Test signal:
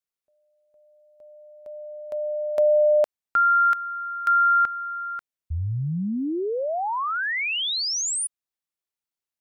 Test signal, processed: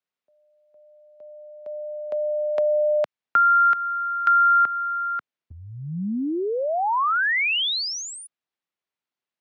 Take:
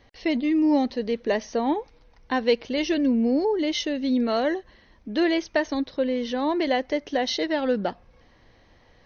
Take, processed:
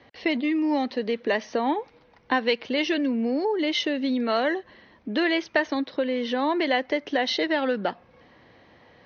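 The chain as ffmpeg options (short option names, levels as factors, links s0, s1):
-filter_complex "[0:a]highpass=130,lowpass=3600,acrossover=split=190|960[s0][s1][s2];[s0]acompressor=threshold=0.00316:ratio=4[s3];[s1]acompressor=threshold=0.0316:ratio=4[s4];[s2]acompressor=threshold=0.0708:ratio=4[s5];[s3][s4][s5]amix=inputs=3:normalize=0,volume=1.78"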